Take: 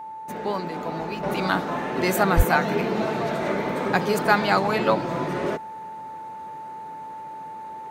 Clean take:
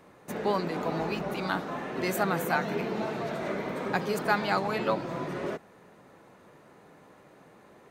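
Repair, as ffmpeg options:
-filter_complex "[0:a]bandreject=f=880:w=30,asplit=3[s0][s1][s2];[s0]afade=t=out:st=2.36:d=0.02[s3];[s1]highpass=f=140:w=0.5412,highpass=f=140:w=1.3066,afade=t=in:st=2.36:d=0.02,afade=t=out:st=2.48:d=0.02[s4];[s2]afade=t=in:st=2.48:d=0.02[s5];[s3][s4][s5]amix=inputs=3:normalize=0,asetnsamples=n=441:p=0,asendcmd='1.23 volume volume -7dB',volume=1"

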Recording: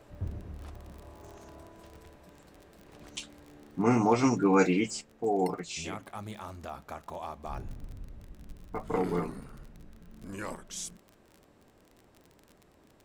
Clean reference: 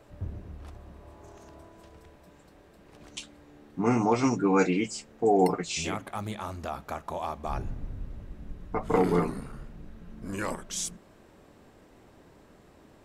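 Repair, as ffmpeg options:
-af "adeclick=t=4,asetnsamples=n=441:p=0,asendcmd='5.01 volume volume 6dB',volume=1"

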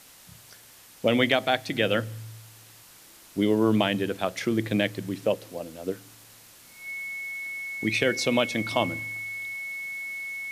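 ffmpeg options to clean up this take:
-af "adeclick=t=4,bandreject=f=2200:w=30,afwtdn=0.0032"

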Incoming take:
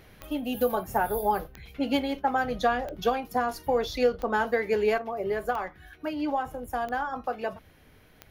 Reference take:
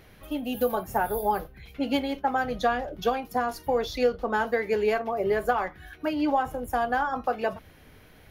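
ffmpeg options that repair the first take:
-af "adeclick=t=4,asetnsamples=n=441:p=0,asendcmd='4.98 volume volume 4dB',volume=1"

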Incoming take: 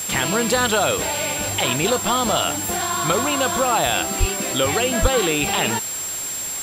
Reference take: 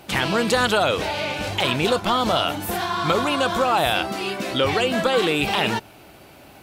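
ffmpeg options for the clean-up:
-filter_complex "[0:a]bandreject=f=7500:w=30,asplit=3[s0][s1][s2];[s0]afade=t=out:st=4.19:d=0.02[s3];[s1]highpass=f=140:w=0.5412,highpass=f=140:w=1.3066,afade=t=in:st=4.19:d=0.02,afade=t=out:st=4.31:d=0.02[s4];[s2]afade=t=in:st=4.31:d=0.02[s5];[s3][s4][s5]amix=inputs=3:normalize=0,asplit=3[s6][s7][s8];[s6]afade=t=out:st=5.01:d=0.02[s9];[s7]highpass=f=140:w=0.5412,highpass=f=140:w=1.3066,afade=t=in:st=5.01:d=0.02,afade=t=out:st=5.13:d=0.02[s10];[s8]afade=t=in:st=5.13:d=0.02[s11];[s9][s10][s11]amix=inputs=3:normalize=0,afwtdn=0.025"

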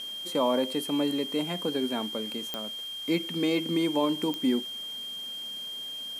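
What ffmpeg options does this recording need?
-af "adeclick=t=4,bandreject=f=3200:w=30,afwtdn=0.0028"

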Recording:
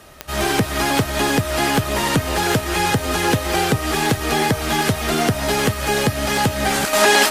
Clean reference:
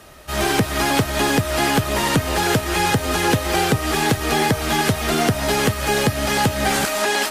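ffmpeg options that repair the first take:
-af "adeclick=t=4,asetnsamples=n=441:p=0,asendcmd='6.93 volume volume -6.5dB',volume=1"

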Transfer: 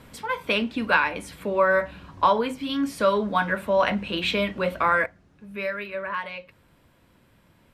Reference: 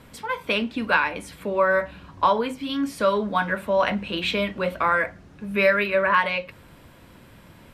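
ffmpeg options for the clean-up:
-af "asetnsamples=n=441:p=0,asendcmd='5.06 volume volume 10.5dB',volume=1"

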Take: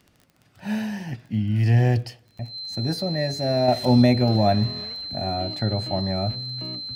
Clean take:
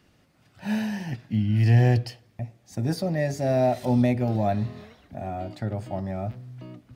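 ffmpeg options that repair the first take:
-af "adeclick=t=4,bandreject=f=4100:w=30,asetnsamples=n=441:p=0,asendcmd='3.68 volume volume -5dB',volume=1"

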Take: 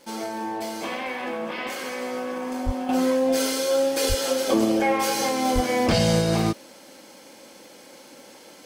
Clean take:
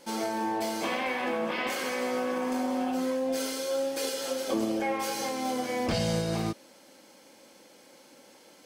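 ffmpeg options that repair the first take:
-filter_complex "[0:a]adeclick=t=4,asplit=3[s0][s1][s2];[s0]afade=t=out:st=2.65:d=0.02[s3];[s1]highpass=f=140:w=0.5412,highpass=f=140:w=1.3066,afade=t=in:st=2.65:d=0.02,afade=t=out:st=2.77:d=0.02[s4];[s2]afade=t=in:st=2.77:d=0.02[s5];[s3][s4][s5]amix=inputs=3:normalize=0,asplit=3[s6][s7][s8];[s6]afade=t=out:st=4.08:d=0.02[s9];[s7]highpass=f=140:w=0.5412,highpass=f=140:w=1.3066,afade=t=in:st=4.08:d=0.02,afade=t=out:st=4.2:d=0.02[s10];[s8]afade=t=in:st=4.2:d=0.02[s11];[s9][s10][s11]amix=inputs=3:normalize=0,asplit=3[s12][s13][s14];[s12]afade=t=out:st=5.54:d=0.02[s15];[s13]highpass=f=140:w=0.5412,highpass=f=140:w=1.3066,afade=t=in:st=5.54:d=0.02,afade=t=out:st=5.66:d=0.02[s16];[s14]afade=t=in:st=5.66:d=0.02[s17];[s15][s16][s17]amix=inputs=3:normalize=0,asetnsamples=n=441:p=0,asendcmd='2.89 volume volume -8dB',volume=1"

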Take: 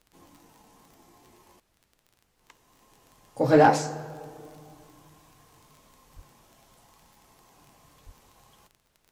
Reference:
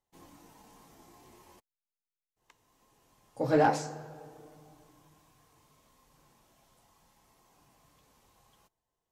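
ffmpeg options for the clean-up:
-filter_complex "[0:a]adeclick=t=4,asplit=3[s0][s1][s2];[s0]afade=t=out:st=6.15:d=0.02[s3];[s1]highpass=f=140:w=0.5412,highpass=f=140:w=1.3066,afade=t=in:st=6.15:d=0.02,afade=t=out:st=6.27:d=0.02[s4];[s2]afade=t=in:st=6.27:d=0.02[s5];[s3][s4][s5]amix=inputs=3:normalize=0,asplit=3[s6][s7][s8];[s6]afade=t=out:st=8.05:d=0.02[s9];[s7]highpass=f=140:w=0.5412,highpass=f=140:w=1.3066,afade=t=in:st=8.05:d=0.02,afade=t=out:st=8.17:d=0.02[s10];[s8]afade=t=in:st=8.17:d=0.02[s11];[s9][s10][s11]amix=inputs=3:normalize=0,agate=range=0.0891:threshold=0.000891,asetnsamples=n=441:p=0,asendcmd='2.15 volume volume -7dB',volume=1"

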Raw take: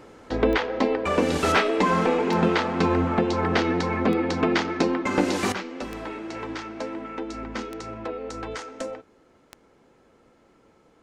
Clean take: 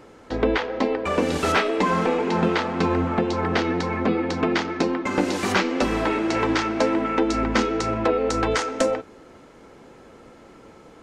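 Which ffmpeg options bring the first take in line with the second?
-af "adeclick=t=4,asetnsamples=n=441:p=0,asendcmd='5.52 volume volume 11.5dB',volume=1"

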